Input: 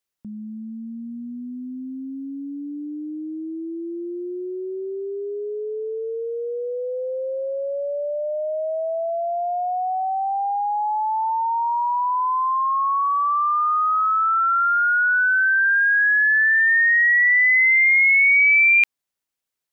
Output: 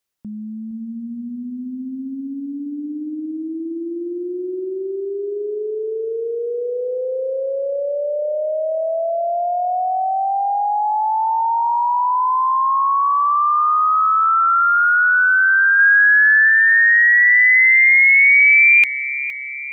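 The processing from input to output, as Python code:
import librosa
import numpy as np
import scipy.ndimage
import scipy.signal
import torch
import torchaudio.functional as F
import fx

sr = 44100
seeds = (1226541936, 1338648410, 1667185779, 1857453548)

y = fx.band_shelf(x, sr, hz=810.0, db=10.5, octaves=1.7, at=(15.79, 16.49))
y = fx.echo_feedback(y, sr, ms=464, feedback_pct=54, wet_db=-14)
y = y * librosa.db_to_amplitude(4.0)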